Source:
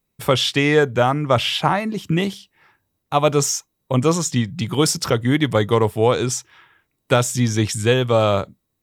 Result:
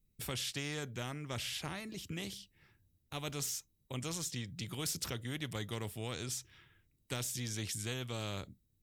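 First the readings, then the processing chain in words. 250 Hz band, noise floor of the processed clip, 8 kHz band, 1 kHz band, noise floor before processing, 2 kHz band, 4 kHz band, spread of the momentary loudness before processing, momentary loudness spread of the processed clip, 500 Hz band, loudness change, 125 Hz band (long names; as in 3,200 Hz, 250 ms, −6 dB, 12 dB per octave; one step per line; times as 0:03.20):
−22.5 dB, −76 dBFS, −15.0 dB, −26.5 dB, −75 dBFS, −19.5 dB, −17.0 dB, 7 LU, 7 LU, −27.5 dB, −21.0 dB, −20.5 dB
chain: guitar amp tone stack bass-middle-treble 10-0-1
every bin compressed towards the loudest bin 2 to 1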